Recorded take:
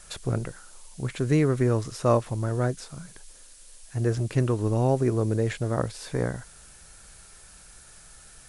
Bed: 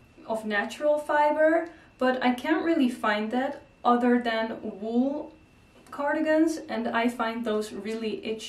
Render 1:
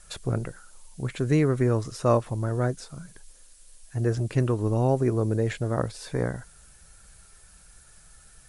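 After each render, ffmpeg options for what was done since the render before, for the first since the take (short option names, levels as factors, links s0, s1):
-af "afftdn=nr=6:nf=-50"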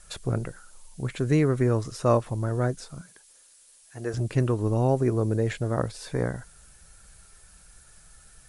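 -filter_complex "[0:a]asettb=1/sr,asplit=3[s0][s1][s2];[s0]atrim=end=3.014[s3];[s1]atrim=start=3.01:end=4.14,asetpts=PTS-STARTPTS,afade=t=in:d=0.004:c=qsin,afade=t=out:st=1.126:d=0.004:c=qsin,highpass=f=520:p=1[s4];[s2]atrim=start=4.136[s5];[s3][s4]acrossfade=d=0.004:c1=hsin:c2=qsin[s6];[s6][s5]acrossfade=d=0.004:c1=qsin:c2=hsin"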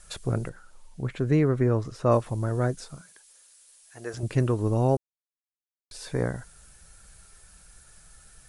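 -filter_complex "[0:a]asettb=1/sr,asplit=3[s0][s1][s2];[s0]atrim=end=0.494[s3];[s1]atrim=start=0.49:end=2.12,asetpts=PTS-STARTPTS,afade=t=in:d=0.004:c=qsin,afade=t=out:st=1.626:d=0.004:c=qsin,lowpass=f=2400:p=1[s4];[s2]atrim=start=2.116[s5];[s3][s4]acrossfade=d=0.004:c1=hsin:c2=qsin[s6];[s6][s5]acrossfade=d=0.004:c1=qsin:c2=hsin,asettb=1/sr,asplit=3[s7][s8][s9];[s7]atrim=end=2.964[s10];[s8]atrim=start=2.96:end=4.23,asetpts=PTS-STARTPTS,afade=t=in:d=0.004:c=qsin,afade=t=out:st=1.266:d=0.004:c=qsin,lowshelf=f=360:g=-10.5[s11];[s9]atrim=start=4.226[s12];[s10][s11]acrossfade=d=0.004:c1=hsin:c2=qsin[s13];[s13][s12]acrossfade=d=0.004:c1=qsin:c2=hsin,asplit=3[s14][s15][s16];[s14]atrim=end=4.97,asetpts=PTS-STARTPTS,afade=t=out:st=4.966:d=0.004:c=hsin[s17];[s15]atrim=start=4.97:end=5.91,asetpts=PTS-STARTPTS,volume=0[s18];[s16]atrim=start=5.91,asetpts=PTS-STARTPTS,afade=t=in:d=0.004:c=hsin[s19];[s17][s18][s19]concat=n=3:v=0:a=1"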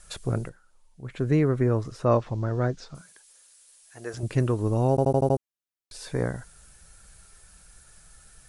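-filter_complex "[0:a]asettb=1/sr,asplit=3[s0][s1][s2];[s0]atrim=end=2.054[s3];[s1]atrim=start=2.05:end=2.95,asetpts=PTS-STARTPTS,afade=t=in:d=0.004:c=qsin,afade=t=out:st=0.896:d=0.004:c=qsin,lowpass=f=5800:w=0.5412,lowpass=f=5800:w=1.3066[s4];[s2]atrim=start=2.946[s5];[s3][s4]acrossfade=d=0.004:c1=hsin:c2=qsin[s6];[s6][s5]acrossfade=d=0.004:c1=qsin:c2=hsin,asplit=9[s7][s8][s9][s10][s11][s12][s13][s14][s15];[s7]atrim=end=0.58,asetpts=PTS-STARTPTS,afade=t=out:st=0.4:d=0.18:silence=0.316228[s16];[s8]atrim=start=0.58:end=1.03,asetpts=PTS-STARTPTS,volume=0.316[s17];[s9]atrim=start=1.03:end=4.982,asetpts=PTS-STARTPTS,afade=t=in:d=0.18:silence=0.316228[s18];[s10]atrim=start=4.898:end=4.982[s19];[s11]atrim=start=4.898:end=4.982[s20];[s12]atrim=start=4.898:end=4.982[s21];[s13]atrim=start=4.898:end=4.982[s22];[s14]atrim=start=4.898:end=4.982[s23];[s15]atrim=start=5.378[s24];[s16][s17][s18]concat=n=3:v=0:a=1[s25];[s25][s19]acrossfade=d=0.004:c1=hsin:c2=hsin[s26];[s26][s20]acrossfade=d=0.004:c1=hsin:c2=hsin[s27];[s27][s21]acrossfade=d=0.004:c1=hsin:c2=hsin[s28];[s28][s22]acrossfade=d=0.004:c1=hsin:c2=hsin[s29];[s29][s23]acrossfade=d=0.004:c1=hsin:c2=hsin[s30];[s30][s24]acrossfade=d=0.004:c1=hsin:c2=hsin"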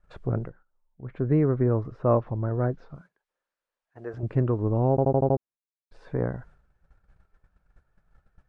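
-af "agate=range=0.224:threshold=0.00355:ratio=16:detection=peak,lowpass=1300"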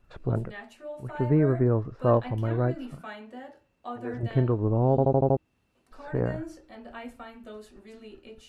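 -filter_complex "[1:a]volume=0.168[s0];[0:a][s0]amix=inputs=2:normalize=0"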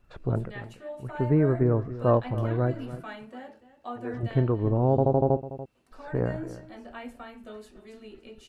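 -af "aecho=1:1:288:0.178"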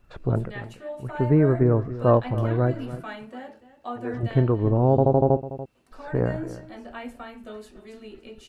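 -af "volume=1.5"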